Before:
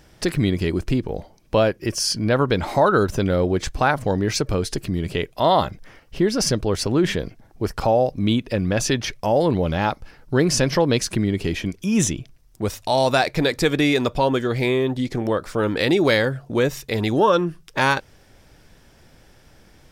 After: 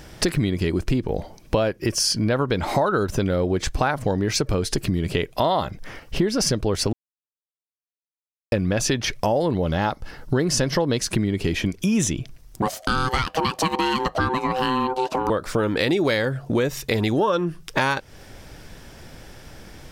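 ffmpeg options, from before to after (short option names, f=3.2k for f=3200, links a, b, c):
-filter_complex "[0:a]asettb=1/sr,asplit=3[a][b][c];[a]atrim=end=9.274[d];[b]atrim=start=9.27:end=11.02,asetpts=PTS-STARTPTS,afade=t=in:d=0.004:c=qsin,afade=t=out:st=1.746:d=0.004:c=qsin,bandreject=f=2.4k:w=8.8[e];[c]atrim=start=11.016[f];[d][e]acrossfade=d=0.004:c1=hsin:c2=qsin[g];[g][f]acrossfade=d=0.004:c1=qsin:c2=hsin,asettb=1/sr,asplit=3[h][i][j];[h]atrim=end=12.624[k];[i]atrim=start=12.62:end=15.3,asetpts=PTS-STARTPTS,afade=t=in:d=0.004:c=qsin,afade=t=out:st=2.676:d=0.004:c=qsin,aeval=exprs='val(0)*sin(2*PI*640*n/s)':c=same[l];[j]atrim=start=15.296[m];[k][l]acrossfade=d=0.004:c1=hsin:c2=qsin[n];[n][m]acrossfade=d=0.004:c1=qsin:c2=hsin,asplit=3[o][p][q];[o]atrim=end=6.93,asetpts=PTS-STARTPTS,afade=t=out:st=6.926:d=0.004:c=hsin[r];[p]atrim=start=6.93:end=8.52,asetpts=PTS-STARTPTS,volume=0[s];[q]atrim=start=8.52,asetpts=PTS-STARTPTS,afade=t=in:d=0.004:c=hsin[t];[r][s][t]concat=n=3:v=0:a=1,acompressor=threshold=-29dB:ratio=4,volume=9dB"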